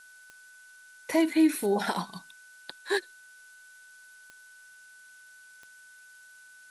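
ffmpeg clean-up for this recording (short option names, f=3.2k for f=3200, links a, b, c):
-af "adeclick=t=4,bandreject=f=1.5k:w=30,afftdn=nr=22:nf=-53"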